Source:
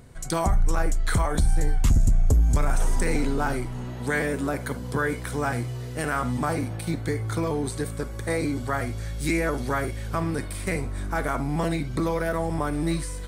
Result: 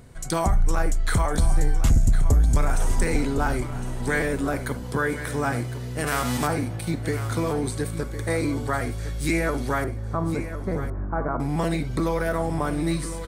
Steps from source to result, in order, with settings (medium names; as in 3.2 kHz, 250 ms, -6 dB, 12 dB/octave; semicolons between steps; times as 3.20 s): 6.06–6.46 s: formants flattened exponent 0.6; 9.84–11.40 s: low-pass 1.3 kHz 24 dB/octave; delay 1058 ms -12 dB; trim +1 dB